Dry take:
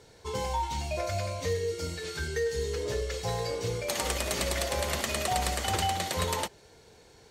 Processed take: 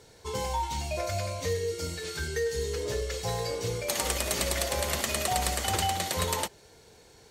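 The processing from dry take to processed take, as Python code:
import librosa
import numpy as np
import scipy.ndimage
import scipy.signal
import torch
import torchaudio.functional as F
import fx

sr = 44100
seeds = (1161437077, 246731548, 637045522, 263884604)

y = fx.high_shelf(x, sr, hz=7700.0, db=6.5)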